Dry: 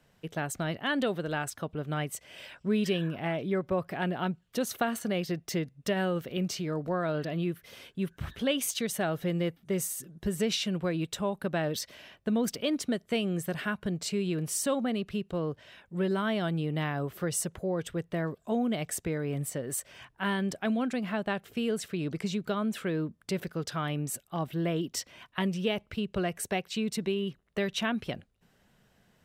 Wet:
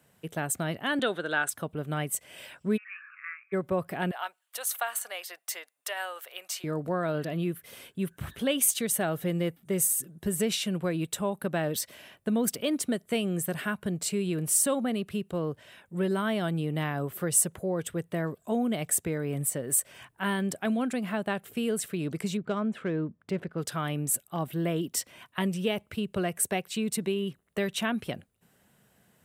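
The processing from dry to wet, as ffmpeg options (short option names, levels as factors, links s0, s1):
-filter_complex "[0:a]asettb=1/sr,asplit=3[s0][s1][s2];[s0]atrim=end=0.994[s3];[s1]atrim=start=0.99:end=1.49,asetpts=PTS-STARTPTS,afade=t=in:d=0.004:c=qsin,afade=t=out:st=0.496:d=0.004:c=qsin,highpass=260,equalizer=f=1500:t=q:w=4:g=10,equalizer=f=3600:t=q:w=4:g=10,equalizer=f=5100:t=q:w=4:g=-5,equalizer=f=8100:t=q:w=4:g=-5,lowpass=f=9600:w=0.5412,lowpass=f=9600:w=1.3066[s4];[s2]atrim=start=1.486[s5];[s3][s4]acrossfade=d=0.004:c1=hsin:c2=qsin[s6];[s6][s5]acrossfade=d=0.004:c1=qsin:c2=hsin,asplit=3[s7][s8][s9];[s7]afade=t=out:st=2.76:d=0.02[s10];[s8]asuperpass=centerf=1700:order=20:qfactor=1.2,afade=t=in:st=2.76:d=0.02,afade=t=out:st=3.52:d=0.02[s11];[s9]afade=t=in:st=3.52:d=0.02[s12];[s10][s11][s12]amix=inputs=3:normalize=0,asettb=1/sr,asplit=3[s13][s14][s15];[s13]atrim=end=4.114[s16];[s14]atrim=start=4.11:end=6.64,asetpts=PTS-STARTPTS,afade=t=in:d=0.004:c=qsin,afade=t=out:st=2.526:d=0.004:c=qsin,highpass=f=730:w=0.5412,highpass=f=730:w=1.3066[s17];[s15]atrim=start=6.636[s18];[s16][s17]acrossfade=d=0.004:c1=hsin:c2=qsin[s19];[s19][s18]acrossfade=d=0.004:c1=qsin:c2=hsin,asettb=1/sr,asplit=3[s20][s21][s22];[s20]atrim=end=22.374[s23];[s21]atrim=start=22.37:end=23.58,asetpts=PTS-STARTPTS,afade=t=in:d=0.004:c=qsin,afade=t=out:st=1.206:d=0.004:c=qsin,adynamicsmooth=sensitivity=2:basefreq=2300[s24];[s22]atrim=start=23.576[s25];[s23][s24]acrossfade=d=0.004:c1=hsin:c2=qsin[s26];[s26][s25]acrossfade=d=0.004:c1=qsin:c2=hsin,highpass=77,highshelf=f=7100:t=q:w=1.5:g=7.5,volume=1.12"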